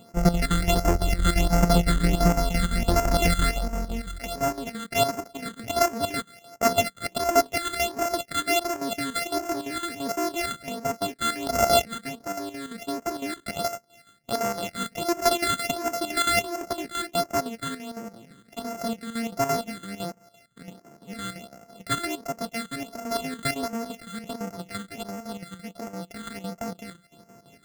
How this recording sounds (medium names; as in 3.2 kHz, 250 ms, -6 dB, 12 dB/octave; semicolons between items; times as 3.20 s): a buzz of ramps at a fixed pitch in blocks of 64 samples; chopped level 5.9 Hz, depth 65%, duty 70%; phasing stages 8, 1.4 Hz, lowest notch 730–3700 Hz